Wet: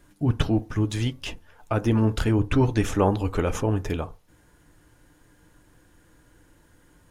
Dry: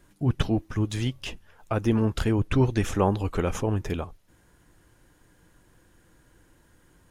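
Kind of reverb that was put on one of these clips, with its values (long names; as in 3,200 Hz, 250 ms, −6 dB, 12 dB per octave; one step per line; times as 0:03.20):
feedback delay network reverb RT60 0.31 s, low-frequency decay 0.9×, high-frequency decay 0.3×, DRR 11 dB
level +1.5 dB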